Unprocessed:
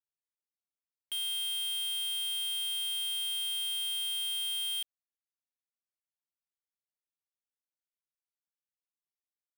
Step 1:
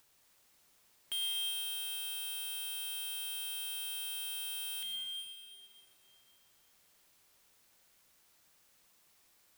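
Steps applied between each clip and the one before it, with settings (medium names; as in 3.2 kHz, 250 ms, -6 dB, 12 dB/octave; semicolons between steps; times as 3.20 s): upward compressor, threshold -45 dBFS; on a send at -2.5 dB: reverberation RT60 3.2 s, pre-delay 90 ms; on the sum: trim -1.5 dB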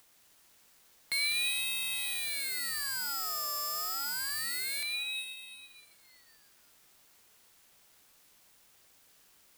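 ring modulator with a swept carrier 1.3 kHz, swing 55%, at 0.28 Hz; trim +8 dB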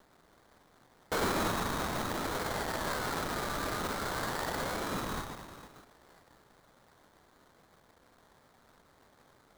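flange 0.75 Hz, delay 9.8 ms, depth 5.2 ms, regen -65%; sample-rate reducer 2.7 kHz, jitter 20%; trim +4.5 dB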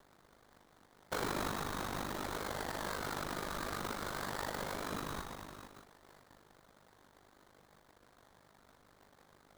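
compression 1.5:1, threshold -42 dBFS, peak gain reduction 5.5 dB; ring modulator 25 Hz; trim +1.5 dB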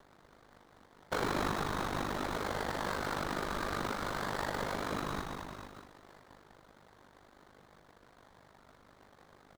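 treble shelf 6.8 kHz -10 dB; on a send: delay 201 ms -9 dB; on the sum: trim +4 dB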